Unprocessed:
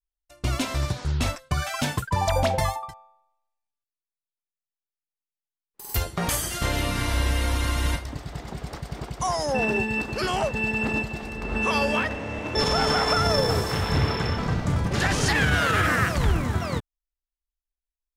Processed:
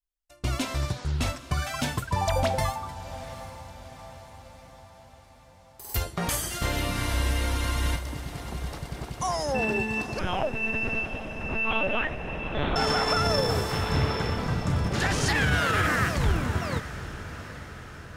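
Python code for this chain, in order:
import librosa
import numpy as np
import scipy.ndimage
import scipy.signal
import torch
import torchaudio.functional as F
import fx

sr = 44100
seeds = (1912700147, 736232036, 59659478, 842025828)

y = fx.lpc_vocoder(x, sr, seeds[0], excitation='pitch_kept', order=8, at=(10.19, 12.76))
y = fx.echo_diffused(y, sr, ms=808, feedback_pct=55, wet_db=-13.5)
y = y * 10.0 ** (-2.5 / 20.0)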